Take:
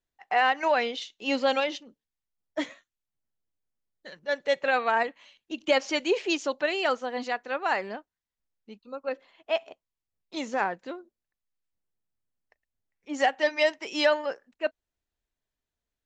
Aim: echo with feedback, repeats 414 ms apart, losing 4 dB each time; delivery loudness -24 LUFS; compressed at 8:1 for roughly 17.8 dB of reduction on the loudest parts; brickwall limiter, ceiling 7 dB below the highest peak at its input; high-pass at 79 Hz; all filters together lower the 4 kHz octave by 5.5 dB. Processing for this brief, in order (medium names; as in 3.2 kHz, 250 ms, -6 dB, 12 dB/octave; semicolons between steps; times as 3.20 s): high-pass 79 Hz; peaking EQ 4 kHz -8 dB; compression 8:1, threshold -38 dBFS; peak limiter -33.5 dBFS; feedback delay 414 ms, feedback 63%, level -4 dB; trim +20 dB